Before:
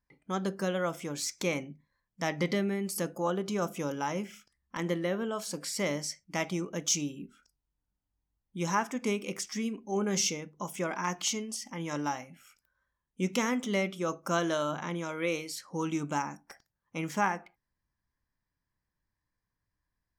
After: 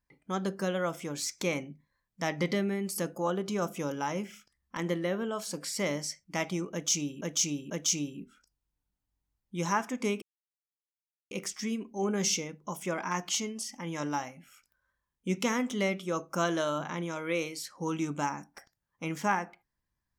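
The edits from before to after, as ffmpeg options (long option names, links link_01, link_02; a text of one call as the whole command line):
ffmpeg -i in.wav -filter_complex "[0:a]asplit=4[link_01][link_02][link_03][link_04];[link_01]atrim=end=7.212[link_05];[link_02]atrim=start=6.718:end=7.212[link_06];[link_03]atrim=start=6.718:end=9.24,asetpts=PTS-STARTPTS,afade=type=out:start_time=2.518:duration=0.004:curve=hsin,apad=pad_dur=1.09[link_07];[link_04]atrim=start=9.24,asetpts=PTS-STARTPTS,afade=type=in:duration=0.004:curve=hsin[link_08];[link_05][link_06]acrossfade=duration=0.004:curve1=hsin:curve2=hsin[link_09];[link_07][link_08]concat=n=2:v=0:a=1[link_10];[link_09][link_10]acrossfade=duration=0.004:curve1=hsin:curve2=hsin" out.wav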